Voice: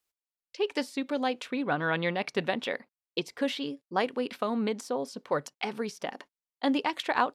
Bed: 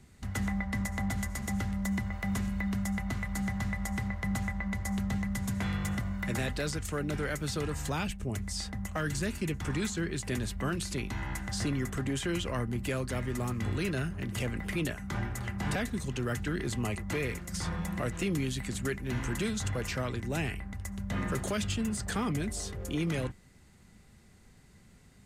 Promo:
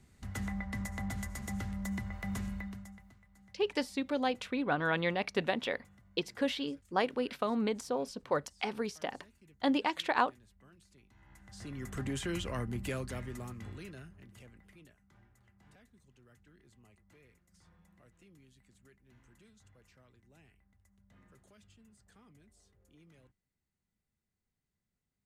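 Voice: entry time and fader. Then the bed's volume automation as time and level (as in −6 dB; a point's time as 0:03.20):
3.00 s, −2.5 dB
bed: 0:02.53 −5.5 dB
0:03.20 −29 dB
0:11.11 −29 dB
0:12.01 −4 dB
0:12.92 −4 dB
0:15.14 −30.5 dB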